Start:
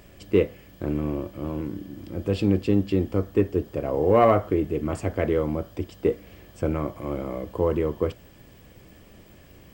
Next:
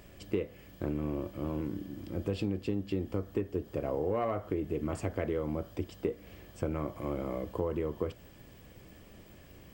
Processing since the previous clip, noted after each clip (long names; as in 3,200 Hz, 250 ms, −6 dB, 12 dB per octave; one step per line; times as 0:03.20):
downward compressor 6 to 1, threshold −25 dBFS, peak gain reduction 12 dB
level −3.5 dB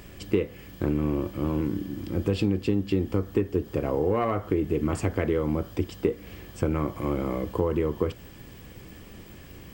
parametric band 620 Hz −7 dB 0.4 octaves
level +8.5 dB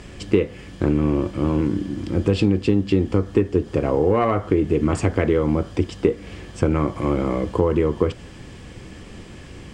low-pass filter 9,100 Hz 24 dB per octave
level +6.5 dB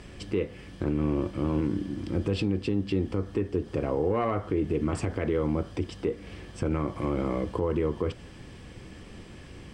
notch filter 6,900 Hz, Q 8.2
brickwall limiter −11.5 dBFS, peak gain reduction 7 dB
level −6 dB